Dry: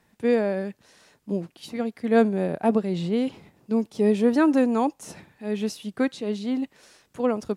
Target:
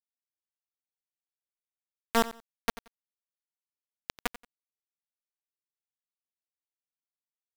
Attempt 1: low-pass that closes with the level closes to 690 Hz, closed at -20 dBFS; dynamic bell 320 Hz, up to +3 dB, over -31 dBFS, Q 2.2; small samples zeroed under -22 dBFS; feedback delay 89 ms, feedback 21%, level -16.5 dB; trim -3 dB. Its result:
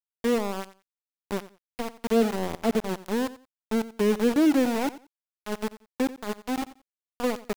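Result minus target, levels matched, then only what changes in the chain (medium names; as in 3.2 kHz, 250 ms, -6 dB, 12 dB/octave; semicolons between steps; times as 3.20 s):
small samples zeroed: distortion -21 dB
change: small samples zeroed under -10 dBFS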